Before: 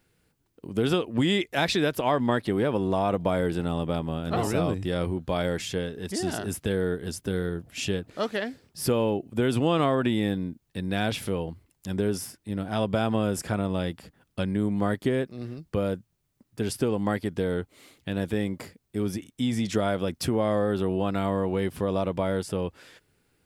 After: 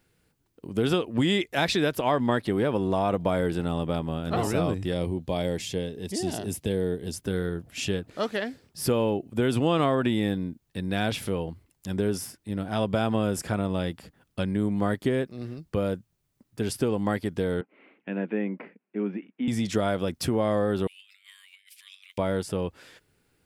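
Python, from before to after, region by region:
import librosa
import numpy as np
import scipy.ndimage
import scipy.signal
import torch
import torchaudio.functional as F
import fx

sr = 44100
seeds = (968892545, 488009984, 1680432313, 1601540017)

y = fx.chain(x, sr, fx.highpass(hz=54.0, slope=12),
    fx.peak_eq(hz=1400.0, db=-11.5, octaves=0.72), at=(4.93, 7.14))
y = fx.chain(y, sr, fx.cheby1_bandpass(low_hz=190.0, high_hz=2600.0, order=4),
    fx.notch(hz=1200.0, q=14.0), at=(17.61, 19.48))
y = fx.chain(y, sr, fx.ellip_highpass(hz=2200.0, order=4, stop_db=70),
    fx.over_compress(threshold_db=-52.0, ratio=-0.5), at=(20.87, 22.18))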